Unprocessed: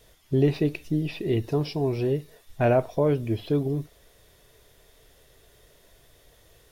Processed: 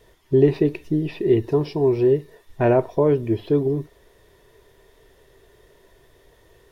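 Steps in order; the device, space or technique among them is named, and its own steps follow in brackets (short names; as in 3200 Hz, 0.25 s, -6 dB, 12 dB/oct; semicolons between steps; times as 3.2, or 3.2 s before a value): inside a helmet (high shelf 3400 Hz -7 dB; small resonant body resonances 380/960/1800 Hz, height 9 dB, ringing for 30 ms); gain +1.5 dB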